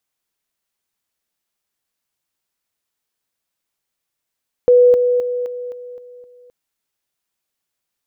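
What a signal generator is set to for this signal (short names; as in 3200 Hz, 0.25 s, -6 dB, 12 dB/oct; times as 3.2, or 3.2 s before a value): level ladder 492 Hz -6.5 dBFS, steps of -6 dB, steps 7, 0.26 s 0.00 s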